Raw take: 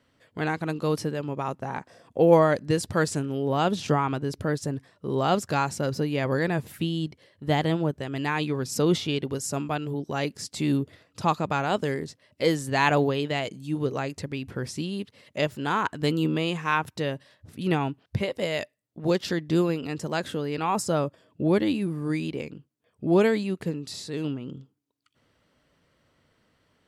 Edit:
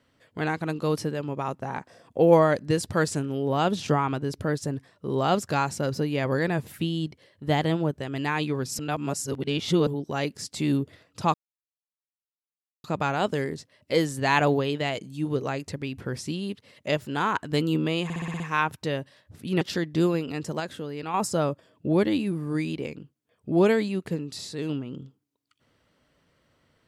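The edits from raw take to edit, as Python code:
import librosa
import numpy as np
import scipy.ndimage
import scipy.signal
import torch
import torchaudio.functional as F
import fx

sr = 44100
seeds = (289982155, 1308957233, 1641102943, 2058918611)

y = fx.edit(x, sr, fx.reverse_span(start_s=8.79, length_s=1.08),
    fx.insert_silence(at_s=11.34, length_s=1.5),
    fx.stutter(start_s=16.54, slice_s=0.06, count=7),
    fx.cut(start_s=17.75, length_s=1.41),
    fx.clip_gain(start_s=20.15, length_s=0.54, db=-5.0), tone=tone)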